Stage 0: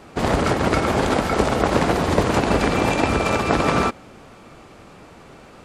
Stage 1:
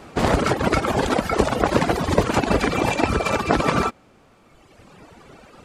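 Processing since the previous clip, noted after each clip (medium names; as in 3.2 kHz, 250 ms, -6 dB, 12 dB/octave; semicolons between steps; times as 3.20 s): reverb removal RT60 1.9 s; trim +2 dB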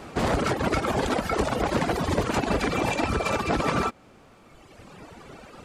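in parallel at +2 dB: compression, threshold -27 dBFS, peak gain reduction 14.5 dB; on the sum: saturation -9.5 dBFS, distortion -14 dB; trim -6 dB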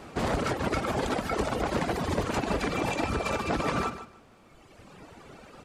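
feedback delay 150 ms, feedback 20%, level -12 dB; trim -4 dB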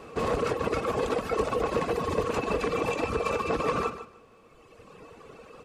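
small resonant body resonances 470/1100/2600 Hz, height 13 dB, ringing for 45 ms; trim -3.5 dB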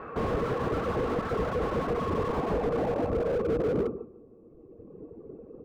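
low-pass sweep 1.5 kHz -> 350 Hz, 1.76–4.00 s; slew-rate limiter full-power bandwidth 20 Hz; trim +2 dB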